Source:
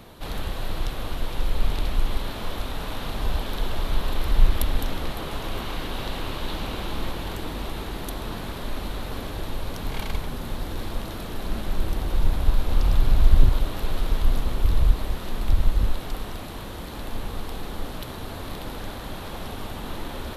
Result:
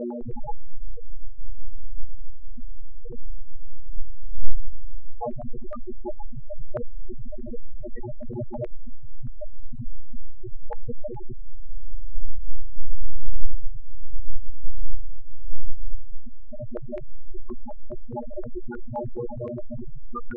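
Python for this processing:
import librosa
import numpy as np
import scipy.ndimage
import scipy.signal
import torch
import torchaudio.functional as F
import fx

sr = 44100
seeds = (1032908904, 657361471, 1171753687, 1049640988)

p1 = fx.octave_divider(x, sr, octaves=2, level_db=1.0)
p2 = p1 + fx.room_early_taps(p1, sr, ms=(31, 66), db=(-5.5, -9.0), dry=0)
p3 = fx.lpc_vocoder(p2, sr, seeds[0], excitation='pitch_kept', order=10)
p4 = fx.room_shoebox(p3, sr, seeds[1], volume_m3=71.0, walls='mixed', distance_m=0.83)
p5 = (np.mod(10.0 ** (2.0 / 20.0) * p4 + 1.0, 2.0) - 1.0) / 10.0 ** (2.0 / 20.0)
p6 = p4 + (p5 * 10.0 ** (-7.0 / 20.0))
p7 = fx.dmg_buzz(p6, sr, base_hz=120.0, harmonics=31, level_db=-13.0, tilt_db=-1, odd_only=False)
p8 = fx.low_shelf(p7, sr, hz=90.0, db=-8.5)
p9 = fx.spec_topn(p8, sr, count=2)
p10 = fx.filter_held_lowpass(p9, sr, hz=9.6, low_hz=560.0, high_hz=2800.0)
y = p10 * 10.0 ** (-5.0 / 20.0)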